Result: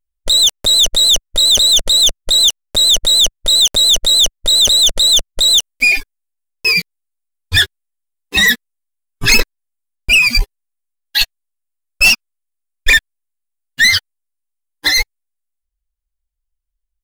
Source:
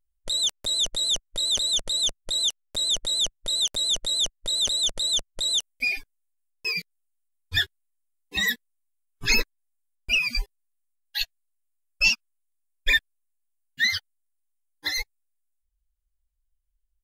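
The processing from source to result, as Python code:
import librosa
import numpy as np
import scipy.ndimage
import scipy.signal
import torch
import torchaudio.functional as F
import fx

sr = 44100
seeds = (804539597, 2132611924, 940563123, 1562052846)

y = fx.leveller(x, sr, passes=3)
y = F.gain(torch.from_numpy(y), 5.0).numpy()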